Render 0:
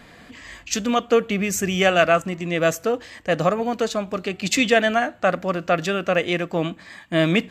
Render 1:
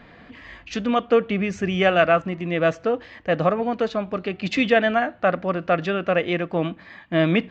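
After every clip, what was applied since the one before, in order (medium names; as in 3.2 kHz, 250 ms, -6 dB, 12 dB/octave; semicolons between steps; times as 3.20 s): Gaussian low-pass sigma 2.2 samples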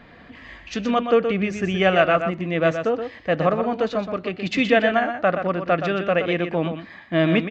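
delay 123 ms -8 dB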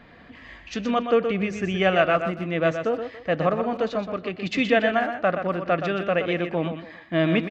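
speakerphone echo 280 ms, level -19 dB; trim -2.5 dB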